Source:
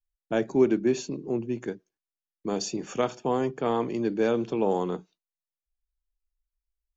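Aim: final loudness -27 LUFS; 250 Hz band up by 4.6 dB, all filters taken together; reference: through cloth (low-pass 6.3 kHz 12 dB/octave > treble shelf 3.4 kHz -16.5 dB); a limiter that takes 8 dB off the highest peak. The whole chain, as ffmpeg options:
-af "equalizer=f=250:t=o:g=6,alimiter=limit=0.188:level=0:latency=1,lowpass=6300,highshelf=f=3400:g=-16.5"

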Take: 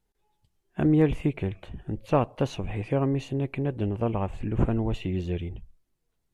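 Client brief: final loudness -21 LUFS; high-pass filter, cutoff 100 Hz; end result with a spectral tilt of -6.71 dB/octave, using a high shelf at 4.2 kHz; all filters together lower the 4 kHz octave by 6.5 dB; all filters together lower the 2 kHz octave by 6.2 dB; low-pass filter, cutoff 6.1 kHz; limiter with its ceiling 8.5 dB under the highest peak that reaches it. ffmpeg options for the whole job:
-af "highpass=100,lowpass=6100,equalizer=f=2000:t=o:g=-7,equalizer=f=4000:t=o:g=-8,highshelf=f=4200:g=5,volume=2.99,alimiter=limit=0.376:level=0:latency=1"

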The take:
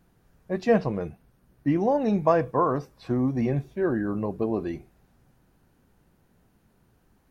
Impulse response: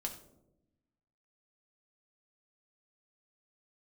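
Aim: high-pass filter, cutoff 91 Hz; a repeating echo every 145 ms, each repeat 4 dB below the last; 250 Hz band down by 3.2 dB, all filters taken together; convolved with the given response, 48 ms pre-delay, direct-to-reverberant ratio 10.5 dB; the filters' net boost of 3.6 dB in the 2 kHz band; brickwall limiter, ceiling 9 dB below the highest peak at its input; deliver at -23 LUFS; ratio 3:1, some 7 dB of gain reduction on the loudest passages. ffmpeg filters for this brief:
-filter_complex "[0:a]highpass=91,equalizer=f=250:t=o:g=-4,equalizer=f=2000:t=o:g=4.5,acompressor=threshold=0.0562:ratio=3,alimiter=limit=0.0891:level=0:latency=1,aecho=1:1:145|290|435|580|725|870|1015|1160|1305:0.631|0.398|0.25|0.158|0.0994|0.0626|0.0394|0.0249|0.0157,asplit=2[s0][s1];[1:a]atrim=start_sample=2205,adelay=48[s2];[s1][s2]afir=irnorm=-1:irlink=0,volume=0.316[s3];[s0][s3]amix=inputs=2:normalize=0,volume=2.24"

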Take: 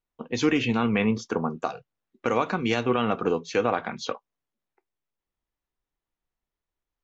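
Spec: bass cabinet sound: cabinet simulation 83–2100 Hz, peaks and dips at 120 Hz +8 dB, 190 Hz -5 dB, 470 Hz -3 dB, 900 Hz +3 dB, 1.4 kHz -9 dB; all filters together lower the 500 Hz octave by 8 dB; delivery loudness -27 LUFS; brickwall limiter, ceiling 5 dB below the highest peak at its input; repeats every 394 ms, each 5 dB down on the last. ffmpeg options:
-af "equalizer=f=500:t=o:g=-7.5,alimiter=limit=0.15:level=0:latency=1,highpass=f=83:w=0.5412,highpass=f=83:w=1.3066,equalizer=f=120:t=q:w=4:g=8,equalizer=f=190:t=q:w=4:g=-5,equalizer=f=470:t=q:w=4:g=-3,equalizer=f=900:t=q:w=4:g=3,equalizer=f=1400:t=q:w=4:g=-9,lowpass=f=2100:w=0.5412,lowpass=f=2100:w=1.3066,aecho=1:1:394|788|1182|1576|1970|2364|2758:0.562|0.315|0.176|0.0988|0.0553|0.031|0.0173,volume=1.41"

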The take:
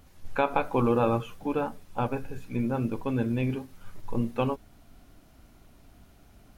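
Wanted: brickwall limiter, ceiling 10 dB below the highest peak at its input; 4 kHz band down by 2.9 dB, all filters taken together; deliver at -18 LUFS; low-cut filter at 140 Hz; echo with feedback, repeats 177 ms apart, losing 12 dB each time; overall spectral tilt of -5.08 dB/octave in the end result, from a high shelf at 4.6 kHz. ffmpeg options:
-af "highpass=140,equalizer=f=4000:t=o:g=-6,highshelf=f=4600:g=4.5,alimiter=limit=0.0944:level=0:latency=1,aecho=1:1:177|354|531:0.251|0.0628|0.0157,volume=5.62"

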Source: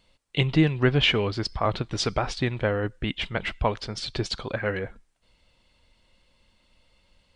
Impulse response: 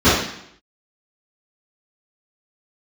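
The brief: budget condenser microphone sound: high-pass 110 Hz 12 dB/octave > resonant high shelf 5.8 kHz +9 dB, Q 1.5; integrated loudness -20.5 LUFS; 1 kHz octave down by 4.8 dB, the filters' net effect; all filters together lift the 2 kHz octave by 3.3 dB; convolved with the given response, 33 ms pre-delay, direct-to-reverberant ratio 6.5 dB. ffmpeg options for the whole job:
-filter_complex "[0:a]equalizer=f=1000:t=o:g=-8.5,equalizer=f=2000:t=o:g=7.5,asplit=2[s0][s1];[1:a]atrim=start_sample=2205,adelay=33[s2];[s1][s2]afir=irnorm=-1:irlink=0,volume=0.0237[s3];[s0][s3]amix=inputs=2:normalize=0,highpass=110,highshelf=f=5800:t=q:w=1.5:g=9,volume=1.58"

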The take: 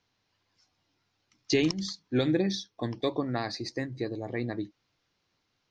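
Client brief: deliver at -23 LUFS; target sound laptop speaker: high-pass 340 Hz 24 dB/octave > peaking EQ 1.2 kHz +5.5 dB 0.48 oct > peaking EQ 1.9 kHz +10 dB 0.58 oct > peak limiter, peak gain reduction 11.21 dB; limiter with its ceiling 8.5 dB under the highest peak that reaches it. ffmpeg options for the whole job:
-af "alimiter=limit=0.0794:level=0:latency=1,highpass=f=340:w=0.5412,highpass=f=340:w=1.3066,equalizer=f=1200:t=o:w=0.48:g=5.5,equalizer=f=1900:t=o:w=0.58:g=10,volume=7.08,alimiter=limit=0.237:level=0:latency=1"

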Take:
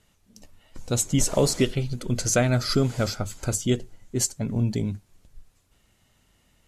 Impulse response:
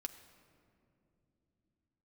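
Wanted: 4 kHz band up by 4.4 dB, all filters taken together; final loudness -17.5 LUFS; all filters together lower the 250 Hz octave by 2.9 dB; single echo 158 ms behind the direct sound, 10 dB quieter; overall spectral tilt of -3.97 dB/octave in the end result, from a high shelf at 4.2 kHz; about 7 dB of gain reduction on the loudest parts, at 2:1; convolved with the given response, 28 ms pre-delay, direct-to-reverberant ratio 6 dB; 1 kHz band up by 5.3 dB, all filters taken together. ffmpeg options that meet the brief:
-filter_complex "[0:a]equalizer=f=250:t=o:g=-4,equalizer=f=1000:t=o:g=8,equalizer=f=4000:t=o:g=8,highshelf=f=4200:g=-4.5,acompressor=threshold=0.0398:ratio=2,aecho=1:1:158:0.316,asplit=2[s0][s1];[1:a]atrim=start_sample=2205,adelay=28[s2];[s1][s2]afir=irnorm=-1:irlink=0,volume=0.708[s3];[s0][s3]amix=inputs=2:normalize=0,volume=3.55"

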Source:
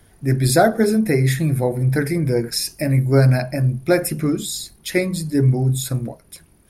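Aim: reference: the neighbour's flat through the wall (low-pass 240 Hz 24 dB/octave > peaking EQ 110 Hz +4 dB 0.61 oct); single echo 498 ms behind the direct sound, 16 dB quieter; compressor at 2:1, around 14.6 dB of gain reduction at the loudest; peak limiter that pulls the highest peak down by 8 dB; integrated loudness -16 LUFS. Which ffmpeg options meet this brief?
-af "acompressor=threshold=0.0126:ratio=2,alimiter=level_in=1.12:limit=0.0631:level=0:latency=1,volume=0.891,lowpass=f=240:w=0.5412,lowpass=f=240:w=1.3066,equalizer=f=110:t=o:w=0.61:g=4,aecho=1:1:498:0.158,volume=7.94"

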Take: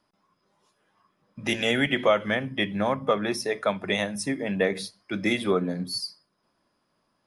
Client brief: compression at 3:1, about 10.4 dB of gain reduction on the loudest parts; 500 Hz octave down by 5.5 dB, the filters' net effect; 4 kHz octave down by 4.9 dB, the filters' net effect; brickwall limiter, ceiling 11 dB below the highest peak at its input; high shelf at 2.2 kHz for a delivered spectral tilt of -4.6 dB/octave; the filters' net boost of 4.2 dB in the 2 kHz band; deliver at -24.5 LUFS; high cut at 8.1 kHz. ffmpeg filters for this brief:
-af "lowpass=8100,equalizer=f=500:t=o:g=-7,equalizer=f=2000:t=o:g=8,highshelf=f=2200:g=-3,equalizer=f=4000:t=o:g=-6.5,acompressor=threshold=0.0251:ratio=3,volume=5.31,alimiter=limit=0.188:level=0:latency=1"

